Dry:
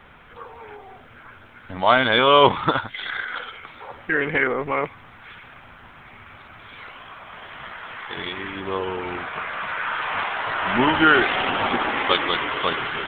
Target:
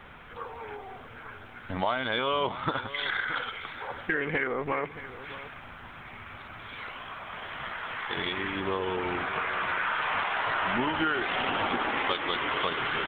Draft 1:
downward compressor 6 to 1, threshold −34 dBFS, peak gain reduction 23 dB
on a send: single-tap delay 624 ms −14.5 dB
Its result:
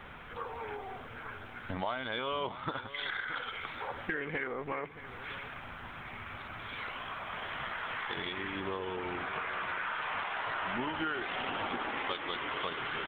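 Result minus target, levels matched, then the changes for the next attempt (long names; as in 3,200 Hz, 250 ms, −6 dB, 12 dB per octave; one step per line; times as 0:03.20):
downward compressor: peak gain reduction +7 dB
change: downward compressor 6 to 1, threshold −25.5 dBFS, peak gain reduction 16 dB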